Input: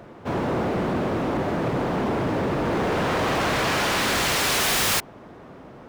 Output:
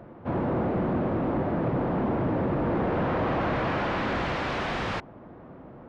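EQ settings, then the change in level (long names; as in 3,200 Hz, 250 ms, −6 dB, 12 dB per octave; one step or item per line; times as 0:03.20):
head-to-tape spacing loss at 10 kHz 42 dB
notch filter 420 Hz, Q 12
0.0 dB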